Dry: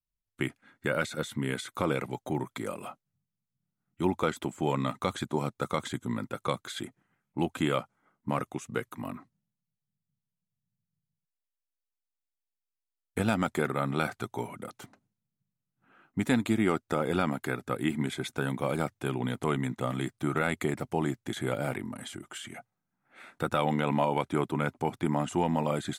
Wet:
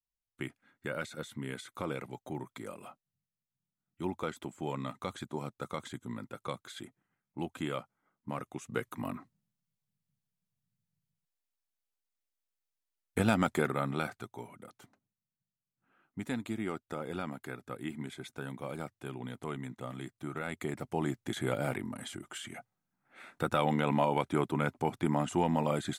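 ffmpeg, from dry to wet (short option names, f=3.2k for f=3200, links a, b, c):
-af "volume=8.5dB,afade=t=in:st=8.44:d=0.52:silence=0.398107,afade=t=out:st=13.47:d=0.85:silence=0.316228,afade=t=in:st=20.42:d=0.88:silence=0.375837"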